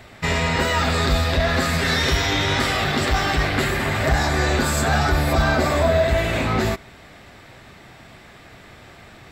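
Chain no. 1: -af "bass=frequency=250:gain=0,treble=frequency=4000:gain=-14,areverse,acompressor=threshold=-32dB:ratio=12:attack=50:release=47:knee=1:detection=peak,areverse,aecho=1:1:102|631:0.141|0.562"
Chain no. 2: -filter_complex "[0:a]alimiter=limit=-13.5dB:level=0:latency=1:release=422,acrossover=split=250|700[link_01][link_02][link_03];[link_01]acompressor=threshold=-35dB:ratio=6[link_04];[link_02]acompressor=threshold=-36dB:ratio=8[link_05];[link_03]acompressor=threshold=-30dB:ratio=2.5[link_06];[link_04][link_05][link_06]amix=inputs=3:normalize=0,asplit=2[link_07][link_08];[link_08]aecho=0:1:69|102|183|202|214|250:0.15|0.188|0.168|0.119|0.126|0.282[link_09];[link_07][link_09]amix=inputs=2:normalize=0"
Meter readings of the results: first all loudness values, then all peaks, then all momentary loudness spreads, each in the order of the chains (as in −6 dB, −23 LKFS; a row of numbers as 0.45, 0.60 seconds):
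−29.0, −28.0 LKFS; −15.5, −15.0 dBFS; 16, 16 LU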